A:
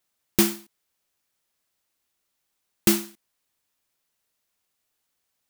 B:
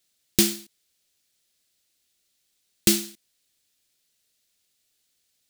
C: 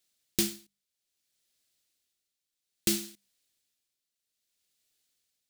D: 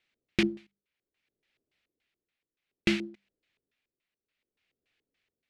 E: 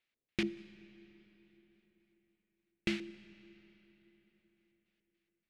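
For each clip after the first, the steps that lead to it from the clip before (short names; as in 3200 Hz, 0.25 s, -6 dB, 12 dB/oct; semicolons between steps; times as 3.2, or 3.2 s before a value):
in parallel at +0.5 dB: compressor, threshold -25 dBFS, peak gain reduction 11 dB; on the sum: graphic EQ 1000/4000/8000 Hz -11/+6/+4 dB; gain -3.5 dB
tremolo 0.61 Hz, depth 70%; notches 50/100/150/200 Hz; gain -4.5 dB
LFO low-pass square 3.5 Hz 410–2300 Hz; gain +4 dB
reverb RT60 4.2 s, pre-delay 5 ms, DRR 15.5 dB; gain -8 dB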